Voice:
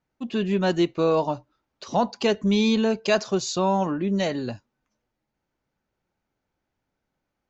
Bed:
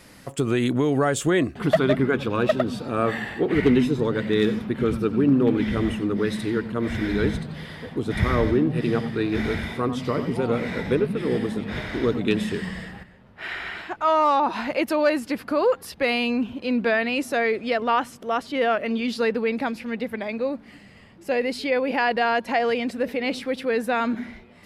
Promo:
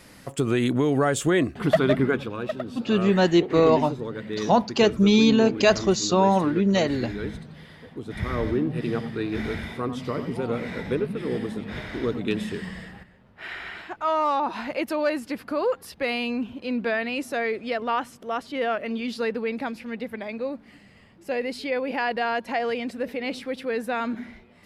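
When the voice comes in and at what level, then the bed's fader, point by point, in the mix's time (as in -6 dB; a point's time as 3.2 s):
2.55 s, +3.0 dB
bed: 2.1 s -0.5 dB
2.36 s -9 dB
8.08 s -9 dB
8.53 s -4 dB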